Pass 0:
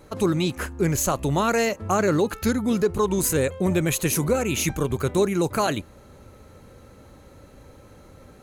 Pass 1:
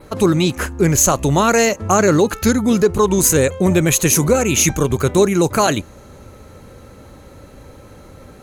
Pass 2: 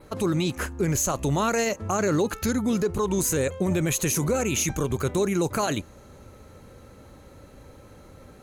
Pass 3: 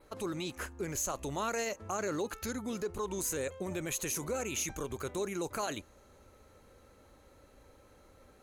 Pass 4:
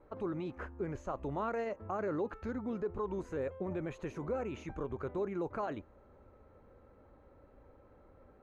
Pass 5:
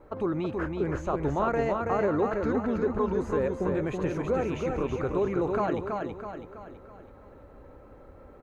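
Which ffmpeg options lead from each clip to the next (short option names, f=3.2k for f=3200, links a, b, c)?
-af "adynamicequalizer=threshold=0.00631:dfrequency=6400:dqfactor=3.3:tfrequency=6400:tqfactor=3.3:attack=5:release=100:ratio=0.375:range=3.5:mode=boostabove:tftype=bell,volume=7.5dB"
-af "alimiter=limit=-8dB:level=0:latency=1:release=25,volume=-7.5dB"
-af "equalizer=f=140:w=0.77:g=-9,volume=-9dB"
-af "lowpass=1.3k"
-af "aecho=1:1:327|654|981|1308|1635|1962:0.631|0.29|0.134|0.0614|0.0283|0.013,volume=8.5dB"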